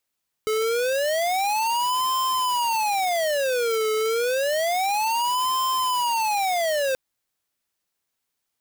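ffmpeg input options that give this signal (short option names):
-f lavfi -i "aevalsrc='0.0708*(2*lt(mod((736.5*t-303.5/(2*PI*0.29)*sin(2*PI*0.29*t)),1),0.5)-1)':d=6.48:s=44100"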